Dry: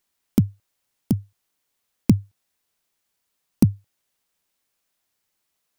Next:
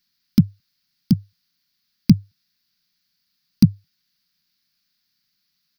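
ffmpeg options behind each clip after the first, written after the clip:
ffmpeg -i in.wav -filter_complex "[0:a]firequalizer=gain_entry='entry(110,0);entry(160,11);entry(460,-18);entry(1500,2);entry(3100,2);entry(4700,15);entry(7500,-12);entry(14000,2)':delay=0.05:min_phase=1,asplit=2[link_01][link_02];[link_02]acompressor=threshold=-15dB:ratio=6,volume=-3dB[link_03];[link_01][link_03]amix=inputs=2:normalize=0,volume=-4.5dB" out.wav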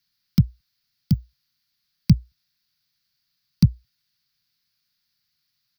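ffmpeg -i in.wav -af "afreqshift=-40,volume=-2.5dB" out.wav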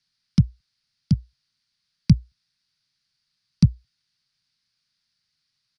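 ffmpeg -i in.wav -af "aresample=22050,aresample=44100" out.wav

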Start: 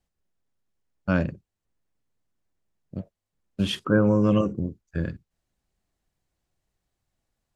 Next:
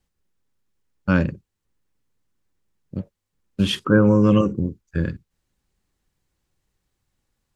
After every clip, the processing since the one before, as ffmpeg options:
ffmpeg -i in.wav -af "equalizer=frequency=670:width=5.8:gain=-11,volume=5dB" out.wav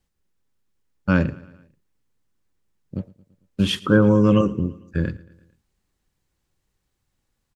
ffmpeg -i in.wav -af "aecho=1:1:112|224|336|448:0.0841|0.048|0.0273|0.0156" out.wav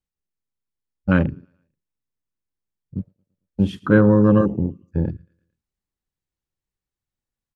ffmpeg -i in.wav -af "afwtdn=0.0501,volume=1.5dB" out.wav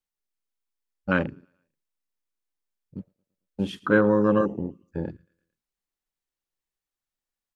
ffmpeg -i in.wav -af "equalizer=frequency=83:width_type=o:width=2.9:gain=-15" out.wav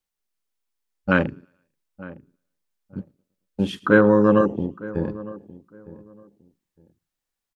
ffmpeg -i in.wav -filter_complex "[0:a]asplit=2[link_01][link_02];[link_02]adelay=909,lowpass=frequency=1100:poles=1,volume=-17.5dB,asplit=2[link_03][link_04];[link_04]adelay=909,lowpass=frequency=1100:poles=1,volume=0.22[link_05];[link_01][link_03][link_05]amix=inputs=3:normalize=0,volume=4.5dB" out.wav

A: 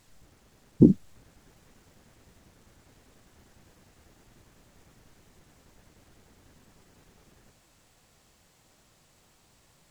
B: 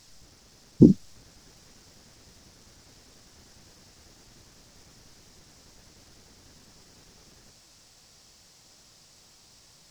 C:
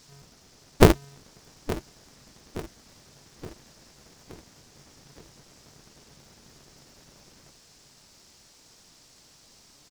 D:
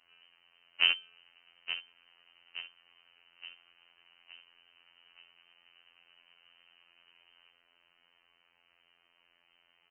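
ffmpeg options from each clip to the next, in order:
ffmpeg -i in.wav -af "equalizer=frequency=5300:width_type=o:width=0.88:gain=13,volume=2dB" out.wav
ffmpeg -i in.wav -af "aecho=1:1:871|1742|2613|3484|4355:0.158|0.084|0.0445|0.0236|0.0125,aeval=exprs='val(0)*sgn(sin(2*PI*140*n/s))':channel_layout=same" out.wav
ffmpeg -i in.wav -af "lowpass=frequency=2600:width_type=q:width=0.5098,lowpass=frequency=2600:width_type=q:width=0.6013,lowpass=frequency=2600:width_type=q:width=0.9,lowpass=frequency=2600:width_type=q:width=2.563,afreqshift=-3100,alimiter=limit=-3.5dB:level=0:latency=1:release=108,afftfilt=real='hypot(re,im)*cos(PI*b)':imag='0':win_size=2048:overlap=0.75,volume=-4.5dB" out.wav

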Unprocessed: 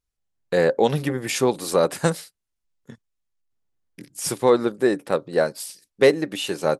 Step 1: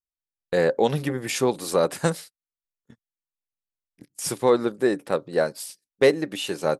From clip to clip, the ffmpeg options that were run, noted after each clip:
ffmpeg -i in.wav -af "agate=range=-18dB:threshold=-38dB:ratio=16:detection=peak,volume=-2dB" out.wav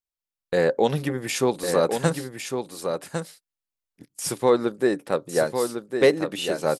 ffmpeg -i in.wav -af "aecho=1:1:1104:0.473" out.wav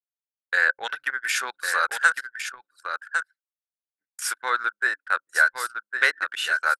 ffmpeg -i in.wav -af "highpass=frequency=1500:width_type=q:width=8.7,anlmdn=15.8" out.wav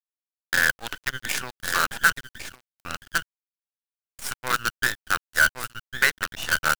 ffmpeg -i in.wav -af "acrusher=bits=4:dc=4:mix=0:aa=0.000001,aeval=exprs='sgn(val(0))*max(abs(val(0))-0.0075,0)':channel_layout=same" out.wav

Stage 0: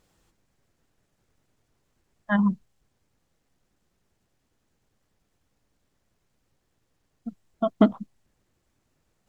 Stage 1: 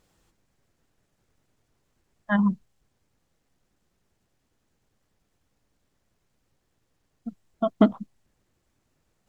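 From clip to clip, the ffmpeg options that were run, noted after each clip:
ffmpeg -i in.wav -af anull out.wav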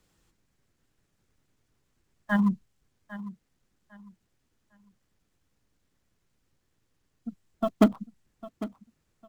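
ffmpeg -i in.wav -filter_complex "[0:a]acrossover=split=150|580|770[link_01][link_02][link_03][link_04];[link_03]acrusher=bits=5:dc=4:mix=0:aa=0.000001[link_05];[link_01][link_02][link_05][link_04]amix=inputs=4:normalize=0,aecho=1:1:802|1604|2406:0.168|0.0436|0.0113,volume=-1.5dB" out.wav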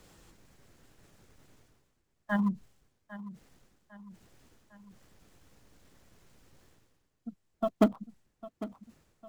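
ffmpeg -i in.wav -af "equalizer=frequency=610:width=0.91:gain=4,areverse,acompressor=mode=upward:threshold=-38dB:ratio=2.5,areverse,volume=-5.5dB" out.wav

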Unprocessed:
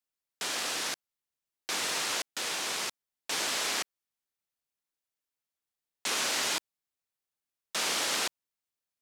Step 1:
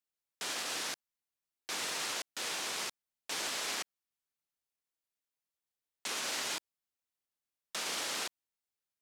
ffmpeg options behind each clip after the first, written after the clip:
ffmpeg -i in.wav -af "alimiter=limit=-23.5dB:level=0:latency=1,volume=-3.5dB" out.wav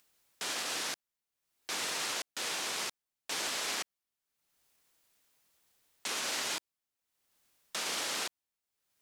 ffmpeg -i in.wav -af "acompressor=mode=upward:threshold=-58dB:ratio=2.5,volume=1.5dB" out.wav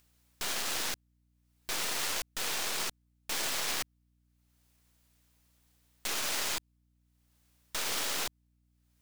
ffmpeg -i in.wav -af "aeval=exprs='0.0562*(cos(1*acos(clip(val(0)/0.0562,-1,1)))-cos(1*PI/2))+0.02*(cos(6*acos(clip(val(0)/0.0562,-1,1)))-cos(6*PI/2))+0.0282*(cos(8*acos(clip(val(0)/0.0562,-1,1)))-cos(8*PI/2))':channel_layout=same,aeval=exprs='val(0)+0.000316*(sin(2*PI*60*n/s)+sin(2*PI*2*60*n/s)/2+sin(2*PI*3*60*n/s)/3+sin(2*PI*4*60*n/s)/4+sin(2*PI*5*60*n/s)/5)':channel_layout=same" out.wav

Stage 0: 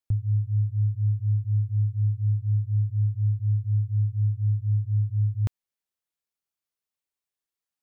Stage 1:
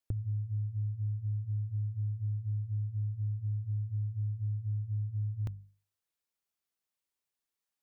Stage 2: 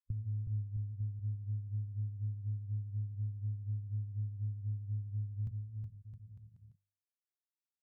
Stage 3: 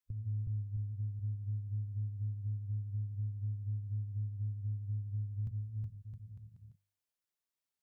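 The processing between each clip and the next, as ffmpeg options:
ffmpeg -i in.wav -af "bandreject=frequency=50:width_type=h:width=6,bandreject=frequency=100:width_type=h:width=6,bandreject=frequency=150:width_type=h:width=6,bandreject=frequency=200:width_type=h:width=6,acompressor=threshold=-32dB:ratio=6" out.wav
ffmpeg -i in.wav -af "aecho=1:1:370|666|902.8|1092|1244:0.631|0.398|0.251|0.158|0.1,afwtdn=0.0178,volume=-3.5dB" out.wav
ffmpeg -i in.wav -af "alimiter=level_in=10.5dB:limit=-24dB:level=0:latency=1:release=234,volume=-10.5dB,volume=3dB" out.wav

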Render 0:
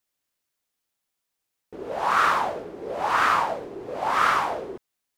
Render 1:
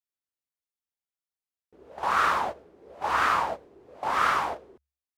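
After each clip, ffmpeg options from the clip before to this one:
ffmpeg -i in.wav -af "agate=range=-14dB:threshold=-27dB:ratio=16:detection=peak,equalizer=frequency=70:width_type=o:width=0.23:gain=13.5,volume=-3dB" out.wav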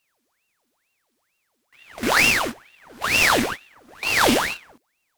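ffmpeg -i in.wav -af "crystalizer=i=7:c=0,aeval=exprs='abs(val(0))':channel_layout=same,aeval=exprs='val(0)*sin(2*PI*1500*n/s+1500*0.85/2.2*sin(2*PI*2.2*n/s))':channel_layout=same,volume=4dB" out.wav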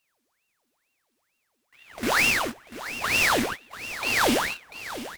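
ffmpeg -i in.wav -af "asoftclip=type=tanh:threshold=-8dB,aecho=1:1:691:0.211,acrusher=bits=5:mode=log:mix=0:aa=0.000001,volume=-3dB" out.wav

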